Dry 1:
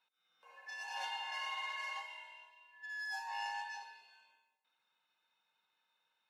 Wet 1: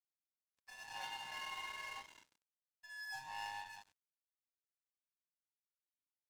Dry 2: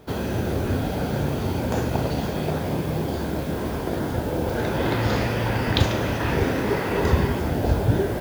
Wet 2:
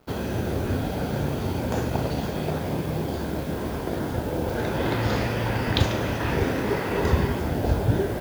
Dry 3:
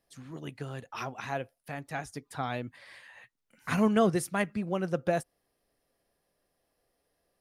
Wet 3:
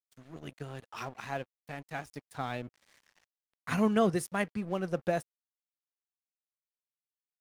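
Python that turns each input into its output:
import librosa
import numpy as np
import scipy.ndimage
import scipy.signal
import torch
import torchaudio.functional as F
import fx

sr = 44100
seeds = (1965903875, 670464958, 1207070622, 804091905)

y = np.sign(x) * np.maximum(np.abs(x) - 10.0 ** (-48.5 / 20.0), 0.0)
y = y * 10.0 ** (-1.5 / 20.0)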